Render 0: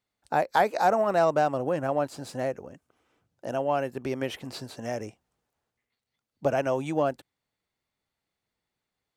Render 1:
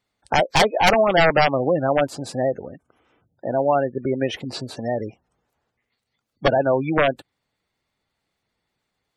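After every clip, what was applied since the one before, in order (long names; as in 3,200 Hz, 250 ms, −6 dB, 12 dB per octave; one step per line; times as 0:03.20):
wrap-around overflow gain 15.5 dB
gate on every frequency bin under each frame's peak −20 dB strong
level +8 dB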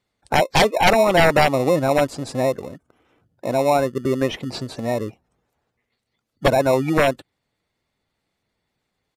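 in parallel at −8.5 dB: decimation without filtering 28×
on the sum: downsampling to 32,000 Hz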